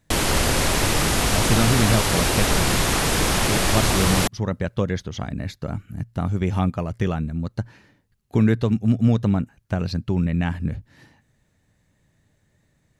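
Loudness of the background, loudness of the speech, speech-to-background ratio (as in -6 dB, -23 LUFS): -20.5 LUFS, -24.5 LUFS, -4.0 dB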